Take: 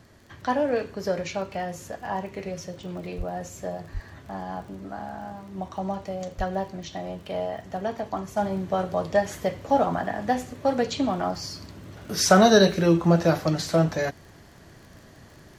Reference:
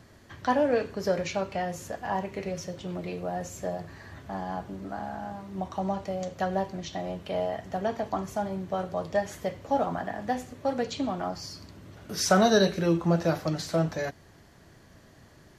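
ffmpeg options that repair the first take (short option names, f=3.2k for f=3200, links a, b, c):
-filter_complex "[0:a]adeclick=t=4,asplit=3[a][b][c];[a]afade=t=out:st=3.17:d=0.02[d];[b]highpass=f=140:w=0.5412,highpass=f=140:w=1.3066,afade=t=in:st=3.17:d=0.02,afade=t=out:st=3.29:d=0.02[e];[c]afade=t=in:st=3.29:d=0.02[f];[d][e][f]amix=inputs=3:normalize=0,asplit=3[g][h][i];[g]afade=t=out:st=3.93:d=0.02[j];[h]highpass=f=140:w=0.5412,highpass=f=140:w=1.3066,afade=t=in:st=3.93:d=0.02,afade=t=out:st=4.05:d=0.02[k];[i]afade=t=in:st=4.05:d=0.02[l];[j][k][l]amix=inputs=3:normalize=0,asplit=3[m][n][o];[m]afade=t=out:st=6.37:d=0.02[p];[n]highpass=f=140:w=0.5412,highpass=f=140:w=1.3066,afade=t=in:st=6.37:d=0.02,afade=t=out:st=6.49:d=0.02[q];[o]afade=t=in:st=6.49:d=0.02[r];[p][q][r]amix=inputs=3:normalize=0,asetnsamples=n=441:p=0,asendcmd='8.37 volume volume -5dB',volume=0dB"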